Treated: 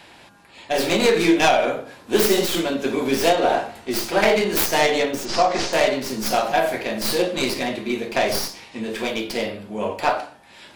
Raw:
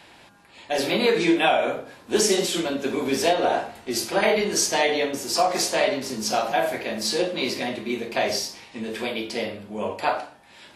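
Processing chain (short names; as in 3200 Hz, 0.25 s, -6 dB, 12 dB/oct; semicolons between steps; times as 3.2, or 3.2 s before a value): tracing distortion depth 0.21 ms; 5.25–5.73 LPF 6800 Hz 24 dB/oct; gain +3 dB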